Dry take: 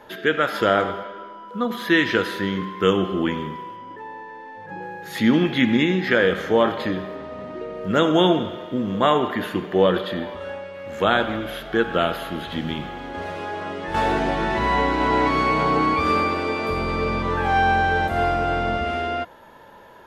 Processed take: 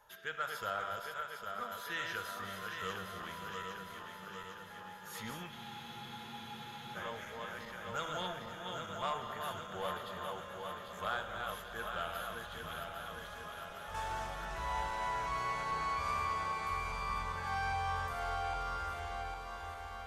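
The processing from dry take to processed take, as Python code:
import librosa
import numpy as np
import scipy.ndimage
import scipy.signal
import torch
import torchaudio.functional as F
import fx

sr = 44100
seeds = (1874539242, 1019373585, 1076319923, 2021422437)

p1 = fx.reverse_delay_fb(x, sr, ms=403, feedback_pct=77, wet_db=-5)
p2 = fx.band_shelf(p1, sr, hz=2900.0, db=-8.5, octaves=1.7)
p3 = 10.0 ** (-5.5 / 20.0) * np.tanh(p2 / 10.0 ** (-5.5 / 20.0))
p4 = fx.tone_stack(p3, sr, knobs='10-0-10')
p5 = p4 + fx.echo_alternate(p4, sr, ms=267, hz=1300.0, feedback_pct=86, wet_db=-12.5, dry=0)
p6 = fx.spec_freeze(p5, sr, seeds[0], at_s=5.52, hold_s=1.43)
y = F.gain(torch.from_numpy(p6), -7.0).numpy()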